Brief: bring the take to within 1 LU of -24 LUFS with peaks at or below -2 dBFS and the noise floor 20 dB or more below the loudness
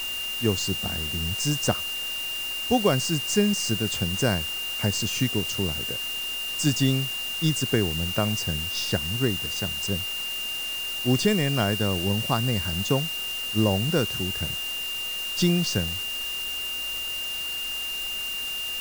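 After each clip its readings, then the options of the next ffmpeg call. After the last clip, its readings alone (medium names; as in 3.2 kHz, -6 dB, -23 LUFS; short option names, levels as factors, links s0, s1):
steady tone 2.8 kHz; tone level -29 dBFS; noise floor -31 dBFS; noise floor target -46 dBFS; loudness -25.5 LUFS; peak level -8.5 dBFS; loudness target -24.0 LUFS
-> -af "bandreject=f=2800:w=30"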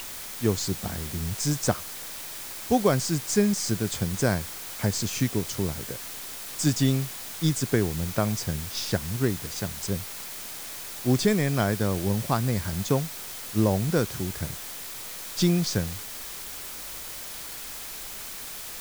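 steady tone not found; noise floor -38 dBFS; noise floor target -48 dBFS
-> -af "afftdn=nr=10:nf=-38"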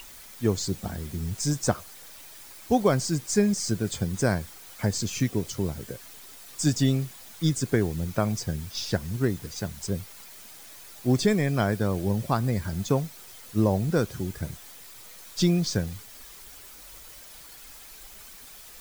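noise floor -47 dBFS; noise floor target -48 dBFS
-> -af "afftdn=nr=6:nf=-47"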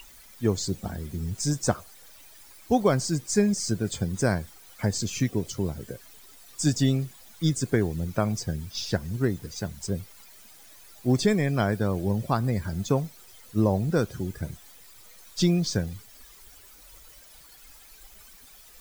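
noise floor -51 dBFS; loudness -27.5 LUFS; peak level -9.0 dBFS; loudness target -24.0 LUFS
-> -af "volume=1.5"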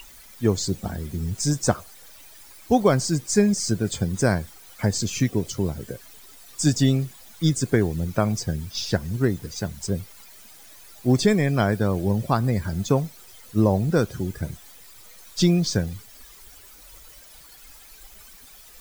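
loudness -24.0 LUFS; peak level -5.5 dBFS; noise floor -48 dBFS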